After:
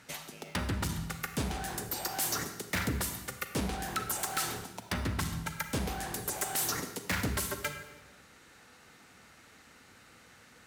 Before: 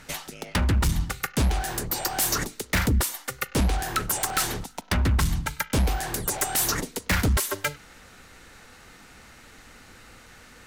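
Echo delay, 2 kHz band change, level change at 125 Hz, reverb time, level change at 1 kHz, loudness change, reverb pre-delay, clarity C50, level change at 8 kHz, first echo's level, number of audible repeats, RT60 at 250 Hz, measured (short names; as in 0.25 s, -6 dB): none, -7.0 dB, -11.0 dB, 1.2 s, -7.0 dB, -8.5 dB, 32 ms, 8.0 dB, -7.5 dB, none, none, 1.4 s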